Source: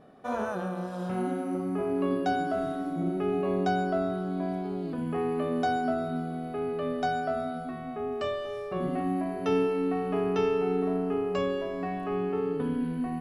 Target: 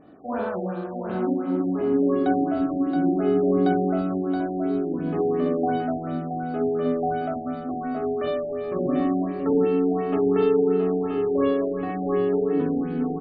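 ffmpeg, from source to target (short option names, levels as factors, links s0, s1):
-af "equalizer=f=300:t=o:w=0.39:g=12,aecho=1:1:43|53|63|673:0.531|0.15|0.631|0.531,afftfilt=real='re*lt(b*sr/1024,810*pow(5000/810,0.5+0.5*sin(2*PI*2.8*pts/sr)))':imag='im*lt(b*sr/1024,810*pow(5000/810,0.5+0.5*sin(2*PI*2.8*pts/sr)))':win_size=1024:overlap=0.75"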